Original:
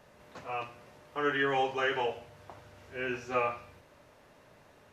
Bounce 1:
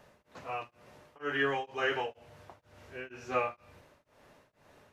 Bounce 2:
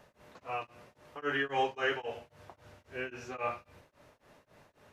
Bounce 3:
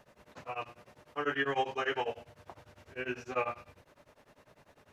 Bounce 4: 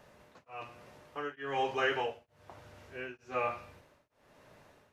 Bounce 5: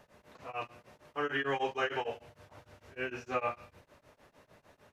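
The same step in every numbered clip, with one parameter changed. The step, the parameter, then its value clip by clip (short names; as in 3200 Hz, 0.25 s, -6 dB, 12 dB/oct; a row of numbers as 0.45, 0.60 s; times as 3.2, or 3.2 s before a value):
beating tremolo, nulls at: 2.1, 3.7, 10, 1.1, 6.6 Hz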